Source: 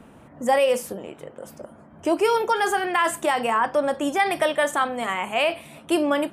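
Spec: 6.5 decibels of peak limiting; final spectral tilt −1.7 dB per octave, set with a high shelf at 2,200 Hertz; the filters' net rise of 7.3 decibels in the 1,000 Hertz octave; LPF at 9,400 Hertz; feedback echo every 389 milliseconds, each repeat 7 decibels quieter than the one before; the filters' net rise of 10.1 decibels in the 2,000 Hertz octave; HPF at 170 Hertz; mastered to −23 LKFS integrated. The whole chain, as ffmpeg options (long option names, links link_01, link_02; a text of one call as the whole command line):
ffmpeg -i in.wav -af "highpass=170,lowpass=9400,equalizer=frequency=1000:width_type=o:gain=6.5,equalizer=frequency=2000:width_type=o:gain=8.5,highshelf=frequency=2200:gain=3.5,alimiter=limit=-7dB:level=0:latency=1,aecho=1:1:389|778|1167|1556|1945:0.447|0.201|0.0905|0.0407|0.0183,volume=-5dB" out.wav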